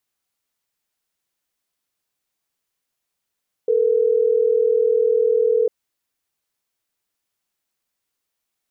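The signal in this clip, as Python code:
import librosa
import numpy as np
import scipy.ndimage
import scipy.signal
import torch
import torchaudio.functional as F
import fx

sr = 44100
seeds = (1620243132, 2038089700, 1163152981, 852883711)

y = fx.call_progress(sr, length_s=3.12, kind='ringback tone', level_db=-17.0)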